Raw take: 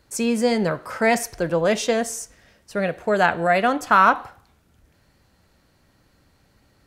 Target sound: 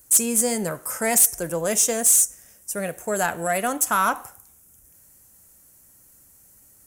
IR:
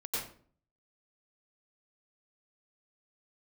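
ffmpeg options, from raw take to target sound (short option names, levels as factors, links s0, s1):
-af "aexciter=amount=14.2:drive=7.6:freq=6400,asoftclip=type=tanh:threshold=0.562,volume=0.562"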